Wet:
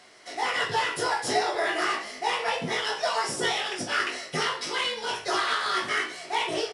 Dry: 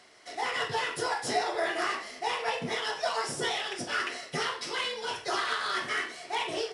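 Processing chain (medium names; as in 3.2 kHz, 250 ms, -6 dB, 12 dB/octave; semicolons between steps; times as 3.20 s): hum notches 50/100/150 Hz; doubling 19 ms -5.5 dB; trim +3 dB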